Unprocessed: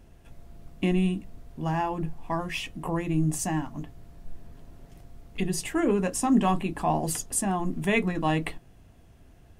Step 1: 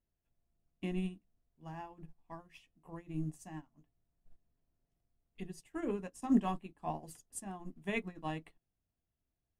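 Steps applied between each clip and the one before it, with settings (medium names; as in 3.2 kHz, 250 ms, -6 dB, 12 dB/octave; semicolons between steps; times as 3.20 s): upward expansion 2.5:1, over -37 dBFS; trim -5 dB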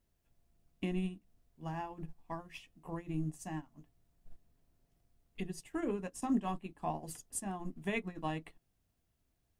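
compression 2:1, threshold -47 dBFS, peak gain reduction 13.5 dB; trim +8.5 dB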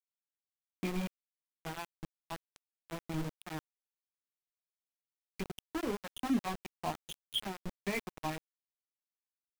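knee-point frequency compression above 2.3 kHz 4:1; reverb removal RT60 0.54 s; small samples zeroed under -36.5 dBFS; trim +1 dB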